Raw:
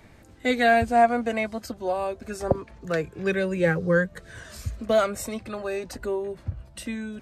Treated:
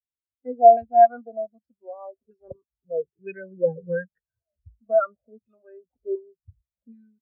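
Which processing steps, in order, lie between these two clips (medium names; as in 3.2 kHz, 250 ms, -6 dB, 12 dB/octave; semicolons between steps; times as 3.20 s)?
LFO low-pass saw down 1.3 Hz 460–5000 Hz; spectral contrast expander 2.5:1; trim +2.5 dB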